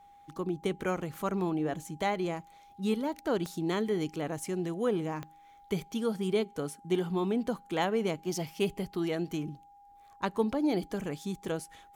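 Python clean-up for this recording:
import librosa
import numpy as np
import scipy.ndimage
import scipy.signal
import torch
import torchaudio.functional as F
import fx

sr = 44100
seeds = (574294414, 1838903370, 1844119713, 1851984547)

y = fx.fix_declick_ar(x, sr, threshold=10.0)
y = fx.notch(y, sr, hz=810.0, q=30.0)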